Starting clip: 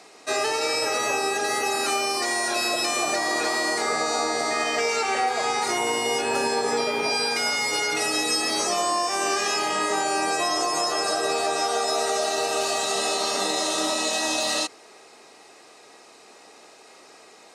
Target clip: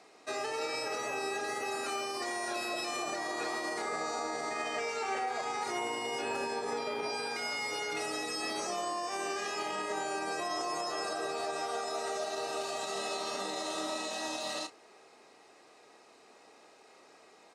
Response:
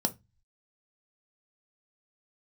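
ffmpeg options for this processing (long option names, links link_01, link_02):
-filter_complex "[0:a]alimiter=limit=-17dB:level=0:latency=1,highshelf=frequency=3700:gain=-7,asplit=2[link_01][link_02];[link_02]adelay=31,volume=-11.5dB[link_03];[link_01][link_03]amix=inputs=2:normalize=0,volume=-8dB"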